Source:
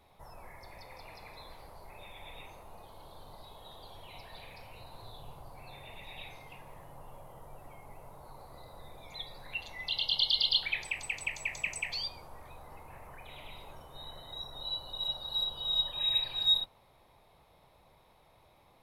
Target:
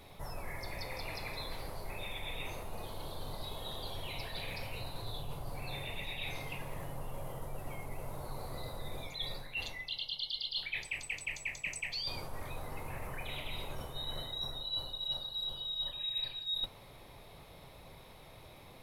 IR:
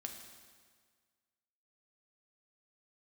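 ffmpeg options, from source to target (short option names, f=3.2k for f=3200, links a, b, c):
-af "equalizer=f=890:w=1.2:g=-7,areverse,acompressor=threshold=-47dB:ratio=12,areverse,flanger=delay=6.9:depth=1.2:regen=-75:speed=0.18:shape=triangular,volume=16dB"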